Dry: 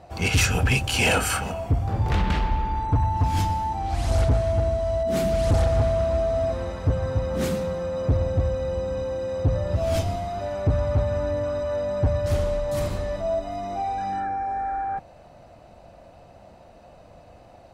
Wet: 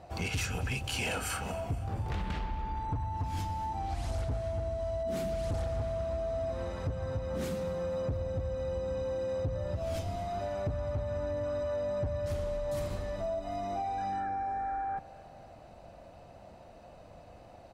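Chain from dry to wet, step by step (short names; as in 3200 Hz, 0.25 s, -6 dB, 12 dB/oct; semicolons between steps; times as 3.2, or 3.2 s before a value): compressor, threshold -28 dBFS, peak gain reduction 10.5 dB; feedback echo 0.235 s, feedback 56%, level -20 dB; gain -3.5 dB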